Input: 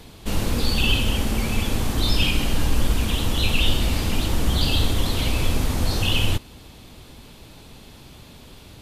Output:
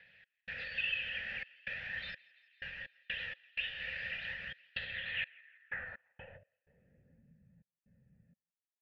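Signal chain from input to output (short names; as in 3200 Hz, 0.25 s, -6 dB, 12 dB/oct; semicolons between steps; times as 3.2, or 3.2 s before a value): EQ curve 180 Hz 0 dB, 320 Hz -27 dB, 1800 Hz +13 dB, 6600 Hz -19 dB; AGC gain up to 11 dB; de-hum 49.37 Hz, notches 14; step gate "x.xxxx.xx..x." 63 bpm -60 dB; compressor, threshold -16 dBFS, peak gain reduction 9 dB; vowel filter e; thinning echo 0.168 s, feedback 80%, high-pass 980 Hz, level -23.5 dB; phaser 0.42 Hz, delay 2.9 ms, feedback 23%; low-pass sweep 5300 Hz -> 210 Hz, 4.72–7.31; gain -4 dB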